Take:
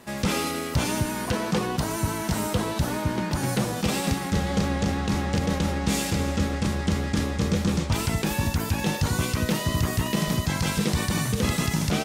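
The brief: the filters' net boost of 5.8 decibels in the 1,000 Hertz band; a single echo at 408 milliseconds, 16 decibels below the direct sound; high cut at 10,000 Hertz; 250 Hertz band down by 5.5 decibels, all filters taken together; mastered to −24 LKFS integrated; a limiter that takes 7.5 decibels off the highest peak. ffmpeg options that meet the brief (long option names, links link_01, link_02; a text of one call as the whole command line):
ffmpeg -i in.wav -af "lowpass=10000,equalizer=frequency=250:width_type=o:gain=-8.5,equalizer=frequency=1000:width_type=o:gain=7.5,alimiter=limit=-18.5dB:level=0:latency=1,aecho=1:1:408:0.158,volume=4dB" out.wav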